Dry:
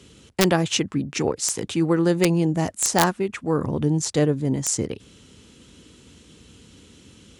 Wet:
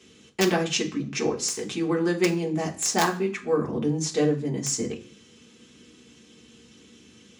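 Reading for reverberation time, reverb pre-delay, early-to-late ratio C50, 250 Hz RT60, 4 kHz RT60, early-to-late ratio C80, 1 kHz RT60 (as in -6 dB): 0.45 s, 3 ms, 13.0 dB, 0.60 s, 0.45 s, 17.5 dB, 0.40 s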